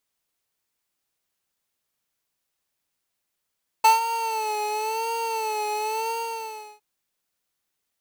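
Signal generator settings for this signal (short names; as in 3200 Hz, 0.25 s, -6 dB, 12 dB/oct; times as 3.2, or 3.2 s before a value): synth patch with vibrato A5, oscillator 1 square, oscillator 2 level -14.5 dB, sub -7 dB, noise -12.5 dB, filter highpass, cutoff 220 Hz, Q 1.5, filter envelope 2 oct, filter decay 0.86 s, filter sustain 35%, attack 8.6 ms, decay 0.15 s, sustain -12.5 dB, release 0.72 s, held 2.24 s, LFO 0.95 Hz, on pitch 75 cents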